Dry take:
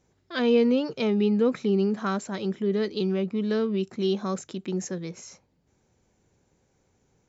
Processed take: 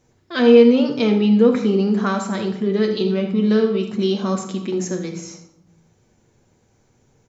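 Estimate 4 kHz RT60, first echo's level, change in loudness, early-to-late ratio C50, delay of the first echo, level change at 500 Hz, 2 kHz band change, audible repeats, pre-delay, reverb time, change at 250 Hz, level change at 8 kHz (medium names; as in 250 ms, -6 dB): 0.55 s, -12.5 dB, +8.5 dB, 7.5 dB, 79 ms, +8.5 dB, +7.5 dB, 1, 9 ms, 0.85 s, +8.5 dB, no reading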